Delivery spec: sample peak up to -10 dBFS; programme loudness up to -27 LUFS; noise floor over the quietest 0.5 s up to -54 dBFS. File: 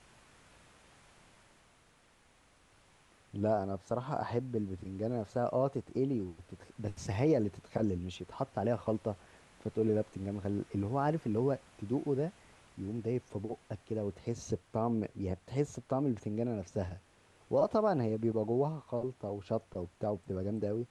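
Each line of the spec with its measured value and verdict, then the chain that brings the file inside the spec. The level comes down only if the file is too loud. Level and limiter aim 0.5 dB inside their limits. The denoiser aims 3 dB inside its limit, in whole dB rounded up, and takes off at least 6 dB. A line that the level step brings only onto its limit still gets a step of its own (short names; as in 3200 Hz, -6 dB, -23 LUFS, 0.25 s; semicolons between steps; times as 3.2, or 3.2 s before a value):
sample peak -17.0 dBFS: OK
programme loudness -35.5 LUFS: OK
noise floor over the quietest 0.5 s -66 dBFS: OK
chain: none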